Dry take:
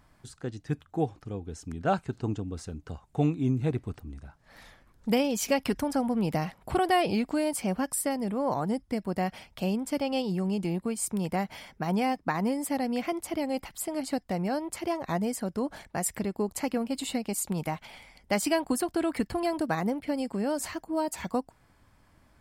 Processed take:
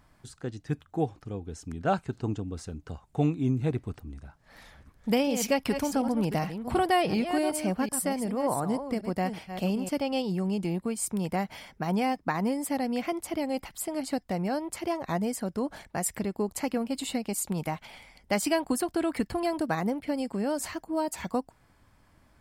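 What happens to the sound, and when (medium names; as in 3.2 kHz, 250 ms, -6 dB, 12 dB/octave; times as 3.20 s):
4.15–9.89 s: chunks repeated in reverse 374 ms, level -9 dB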